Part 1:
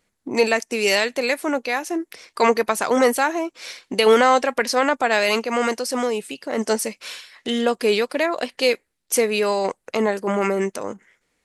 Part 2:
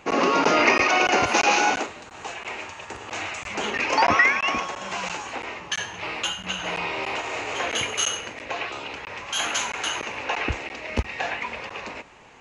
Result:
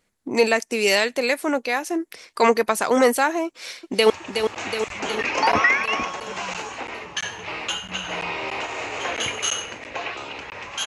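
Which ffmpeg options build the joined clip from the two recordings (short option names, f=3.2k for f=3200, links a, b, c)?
-filter_complex "[0:a]apad=whole_dur=10.86,atrim=end=10.86,atrim=end=4.102[a];[1:a]atrim=start=2.648:end=9.41[b];[a][b]acrossfade=d=0.004:c1=hsin:c2=hsin,asplit=2[c][d];[d]afade=t=in:st=3.46:d=0.01,afade=t=out:st=4.1:d=0.01,aecho=0:1:370|740|1110|1480|1850|2220|2590|2960|3330|3700|4070:0.473151|0.331206|0.231844|0.162291|0.113604|0.0795225|0.0556658|0.038966|0.0272762|0.0190934|0.0133654[e];[c][e]amix=inputs=2:normalize=0"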